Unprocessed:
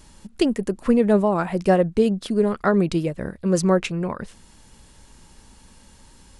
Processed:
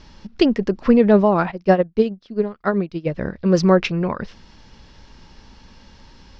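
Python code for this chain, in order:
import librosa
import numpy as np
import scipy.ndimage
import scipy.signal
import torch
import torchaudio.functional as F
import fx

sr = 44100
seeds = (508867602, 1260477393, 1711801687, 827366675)

y = scipy.signal.sosfilt(scipy.signal.ellip(4, 1.0, 60, 5500.0, 'lowpass', fs=sr, output='sos'), x)
y = fx.upward_expand(y, sr, threshold_db=-28.0, expansion=2.5, at=(1.5, 3.05), fade=0.02)
y = F.gain(torch.from_numpy(y), 5.0).numpy()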